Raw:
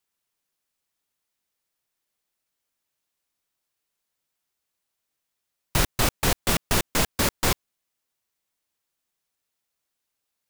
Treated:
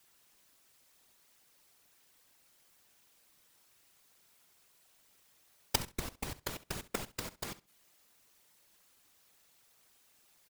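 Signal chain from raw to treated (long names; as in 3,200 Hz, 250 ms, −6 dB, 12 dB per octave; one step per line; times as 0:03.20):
gate with flip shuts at −27 dBFS, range −35 dB
random phases in short frames
on a send: repeating echo 67 ms, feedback 18%, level −17 dB
on the sum: level +14 dB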